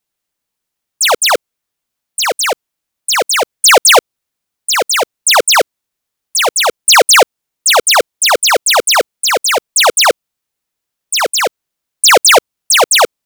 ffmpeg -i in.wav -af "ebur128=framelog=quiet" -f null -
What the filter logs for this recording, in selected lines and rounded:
Integrated loudness:
  I:          -9.8 LUFS
  Threshold: -20.1 LUFS
Loudness range:
  LRA:         3.8 LU
  Threshold: -30.9 LUFS
  LRA low:   -13.1 LUFS
  LRA high:   -9.2 LUFS